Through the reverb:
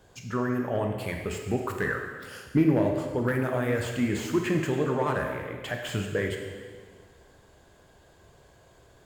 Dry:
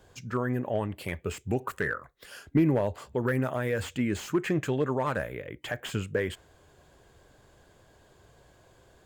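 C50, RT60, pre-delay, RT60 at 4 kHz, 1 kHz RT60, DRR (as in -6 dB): 4.0 dB, 1.7 s, 16 ms, 1.5 s, 1.6 s, 2.5 dB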